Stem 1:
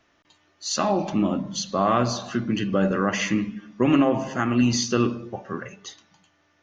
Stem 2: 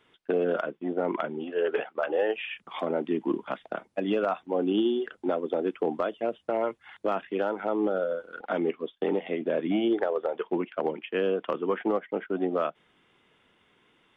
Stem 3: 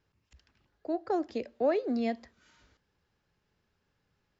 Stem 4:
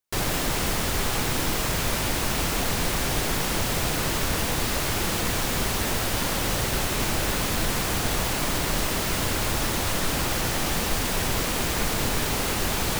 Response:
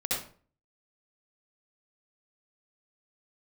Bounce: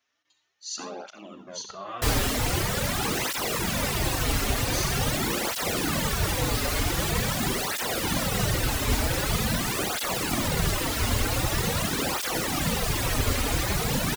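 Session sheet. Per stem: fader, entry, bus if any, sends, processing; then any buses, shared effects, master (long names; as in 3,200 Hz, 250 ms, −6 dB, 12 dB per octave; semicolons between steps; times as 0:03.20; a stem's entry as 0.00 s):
−14.0 dB, 0.00 s, send −12.5 dB, spectral tilt +3.5 dB per octave
−2.0 dB, 0.50 s, no send, power curve on the samples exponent 2; flanger whose copies keep moving one way falling 0.58 Hz
muted
+3.0 dB, 1.90 s, send −12.5 dB, sub-octave generator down 2 octaves, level +2 dB; reverb reduction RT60 1.7 s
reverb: on, RT60 0.45 s, pre-delay 59 ms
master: through-zero flanger with one copy inverted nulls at 0.45 Hz, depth 6.3 ms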